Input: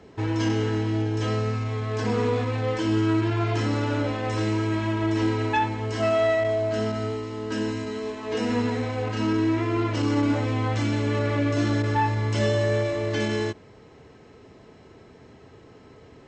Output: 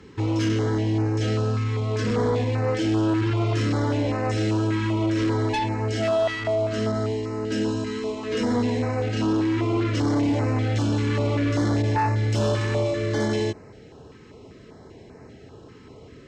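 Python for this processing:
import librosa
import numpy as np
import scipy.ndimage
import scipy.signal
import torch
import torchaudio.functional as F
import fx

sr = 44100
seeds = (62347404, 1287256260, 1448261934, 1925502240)

y = fx.cheby_harmonics(x, sr, harmonics=(5,), levels_db=(-13,), full_scale_db=-11.5)
y = fx.filter_held_notch(y, sr, hz=5.1, low_hz=660.0, high_hz=3300.0)
y = y * 10.0 ** (-2.0 / 20.0)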